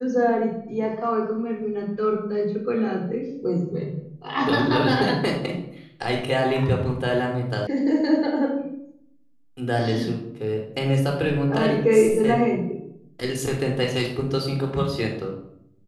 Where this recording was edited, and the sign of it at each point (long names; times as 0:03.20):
0:07.67: cut off before it has died away